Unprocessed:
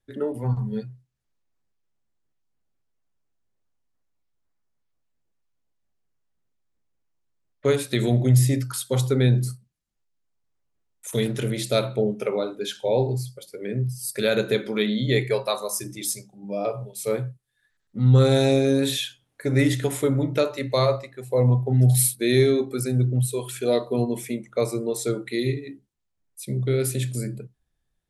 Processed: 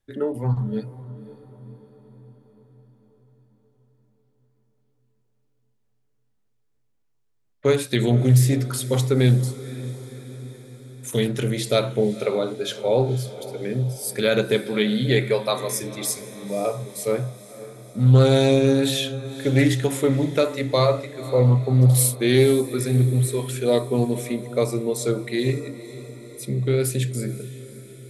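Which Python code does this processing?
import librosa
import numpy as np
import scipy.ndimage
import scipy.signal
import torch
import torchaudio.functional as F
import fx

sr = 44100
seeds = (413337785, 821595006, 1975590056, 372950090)

y = fx.echo_diffused(x, sr, ms=513, feedback_pct=59, wet_db=-15.5)
y = fx.doppler_dist(y, sr, depth_ms=0.2)
y = y * librosa.db_to_amplitude(2.0)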